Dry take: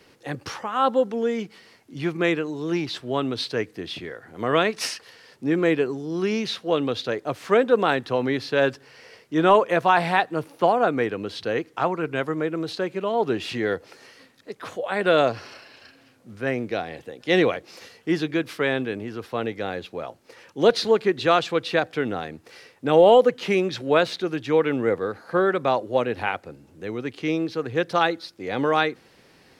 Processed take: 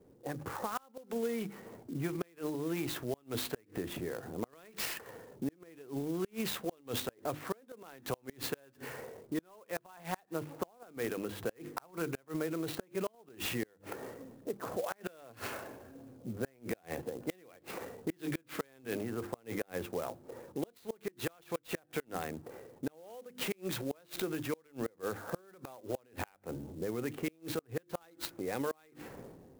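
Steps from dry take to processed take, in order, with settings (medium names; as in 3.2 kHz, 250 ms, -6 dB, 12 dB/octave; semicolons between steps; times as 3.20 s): level-controlled noise filter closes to 440 Hz, open at -19.5 dBFS; level rider gain up to 10 dB; hum notches 50/100/150/200/250/300/350 Hz; transient shaper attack +3 dB, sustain +7 dB; inverted gate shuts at -6 dBFS, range -34 dB; compression 3:1, threshold -35 dBFS, peak gain reduction 16.5 dB; sampling jitter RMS 0.043 ms; trim -3 dB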